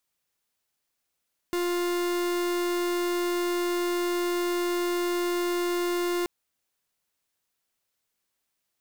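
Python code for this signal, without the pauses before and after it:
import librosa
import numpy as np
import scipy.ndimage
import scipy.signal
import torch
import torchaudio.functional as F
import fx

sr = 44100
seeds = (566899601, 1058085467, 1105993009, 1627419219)

y = fx.pulse(sr, length_s=4.73, hz=351.0, level_db=-27.0, duty_pct=44)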